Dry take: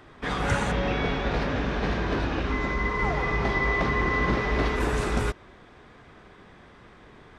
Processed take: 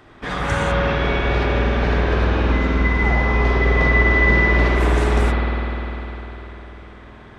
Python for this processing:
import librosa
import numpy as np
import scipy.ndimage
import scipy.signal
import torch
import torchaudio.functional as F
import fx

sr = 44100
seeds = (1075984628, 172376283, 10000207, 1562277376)

y = fx.notch(x, sr, hz=2000.0, q=12.0, at=(3.17, 3.6))
y = fx.rev_spring(y, sr, rt60_s=3.8, pass_ms=(50,), chirp_ms=25, drr_db=-3.0)
y = y * 10.0 ** (2.0 / 20.0)